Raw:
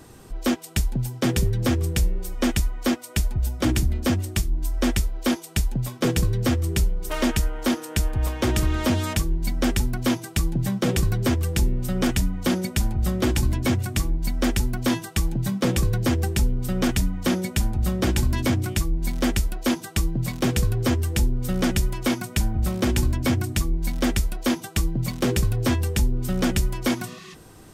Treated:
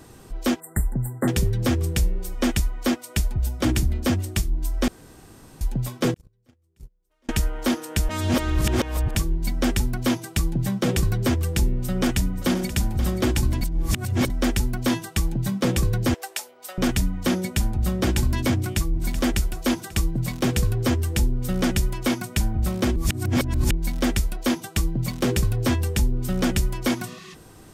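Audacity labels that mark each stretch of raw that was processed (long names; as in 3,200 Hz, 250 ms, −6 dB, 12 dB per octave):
0.600000	1.280000	linear-phase brick-wall band-stop 2,100–7,200 Hz
4.880000	5.610000	fill with room tone
6.140000	7.290000	noise gate −15 dBFS, range −44 dB
8.090000	9.150000	reverse
11.690000	12.710000	delay throw 530 ms, feedback 35%, level −12 dB
13.610000	14.300000	reverse
16.140000	16.780000	Chebyshev high-pass filter 640 Hz, order 3
18.560000	18.990000	delay throw 380 ms, feedback 60%, level −11 dB
22.960000	23.710000	reverse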